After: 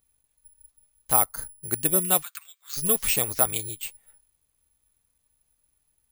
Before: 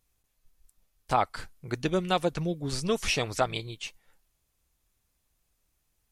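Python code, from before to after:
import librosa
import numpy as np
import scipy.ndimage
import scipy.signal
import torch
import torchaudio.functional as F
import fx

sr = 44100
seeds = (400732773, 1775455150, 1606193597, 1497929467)

y = fx.peak_eq(x, sr, hz=2700.0, db=-14.5, octaves=0.77, at=(1.22, 1.67), fade=0.02)
y = fx.ellip_highpass(y, sr, hz=1200.0, order=4, stop_db=80, at=(2.21, 2.76), fade=0.02)
y = (np.kron(scipy.signal.resample_poly(y, 1, 4), np.eye(4)[0]) * 4)[:len(y)]
y = F.gain(torch.from_numpy(y), -1.5).numpy()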